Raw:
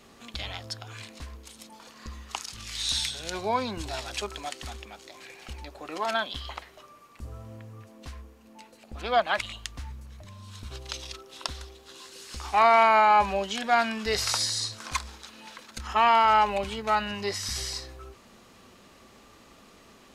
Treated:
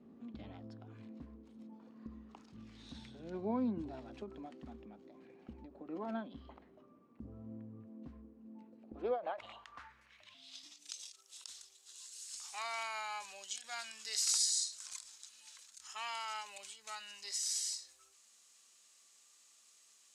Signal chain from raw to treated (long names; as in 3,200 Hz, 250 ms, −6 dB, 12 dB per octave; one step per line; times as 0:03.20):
0:10.34–0:10.91: frequency shifter −360 Hz
band-pass filter sweep 240 Hz → 7,700 Hz, 0:08.78–0:10.87
every ending faded ahead of time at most 150 dB per second
level +2.5 dB